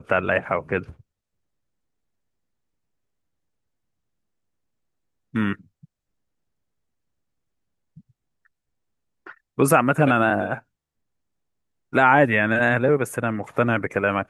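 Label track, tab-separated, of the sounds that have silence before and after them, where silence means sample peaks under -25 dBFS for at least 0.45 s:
5.350000	5.530000	sound
9.590000	10.550000	sound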